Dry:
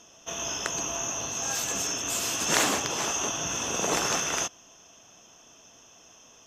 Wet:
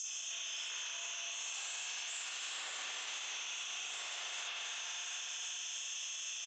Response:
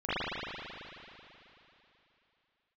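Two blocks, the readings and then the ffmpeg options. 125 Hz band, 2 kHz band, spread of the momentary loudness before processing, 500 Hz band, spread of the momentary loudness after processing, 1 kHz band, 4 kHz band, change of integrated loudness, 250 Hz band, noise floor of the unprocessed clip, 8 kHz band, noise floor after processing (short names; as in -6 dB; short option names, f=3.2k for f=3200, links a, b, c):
under -40 dB, -9.5 dB, 7 LU, -25.5 dB, 1 LU, -18.0 dB, -6.0 dB, -12.5 dB, under -35 dB, -55 dBFS, -12.5 dB, -44 dBFS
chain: -filter_complex "[0:a]acrossover=split=2400[a][b];[b]aeval=exprs='0.282*sin(PI/2*7.94*val(0)/0.282)':c=same[c];[a][c]amix=inputs=2:normalize=0,acrossover=split=5700[d][e];[e]acompressor=threshold=-34dB:ratio=4:attack=1:release=60[f];[d][f]amix=inputs=2:normalize=0,flanger=delay=2.3:depth=6:regen=86:speed=0.66:shape=sinusoidal,aecho=1:1:236|472|708|944:0.15|0.0748|0.0374|0.0187,acompressor=threshold=-38dB:ratio=6,acrusher=bits=9:mix=0:aa=0.000001,lowpass=f=7.4k:t=q:w=14,flanger=delay=15.5:depth=3.9:speed=2.7[g];[1:a]atrim=start_sample=2205[h];[g][h]afir=irnorm=-1:irlink=0,alimiter=level_in=6dB:limit=-24dB:level=0:latency=1,volume=-6dB,highpass=830,volume=-3dB"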